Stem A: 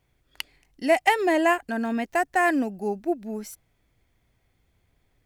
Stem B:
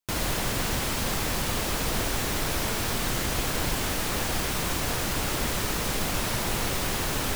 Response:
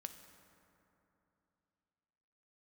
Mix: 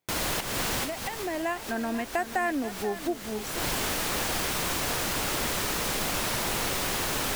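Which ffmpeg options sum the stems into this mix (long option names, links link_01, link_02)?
-filter_complex "[0:a]acompressor=threshold=-23dB:ratio=6,highpass=220,volume=-1dB,afade=type=in:start_time=1.09:duration=0.63:silence=0.375837,asplit=3[link_01][link_02][link_03];[link_02]volume=-13dB[link_04];[1:a]lowshelf=frequency=190:gain=-8.5,volume=0.5dB[link_05];[link_03]apad=whole_len=324164[link_06];[link_05][link_06]sidechaincompress=threshold=-42dB:ratio=12:attack=16:release=251[link_07];[link_04]aecho=0:1:486:1[link_08];[link_01][link_07][link_08]amix=inputs=3:normalize=0"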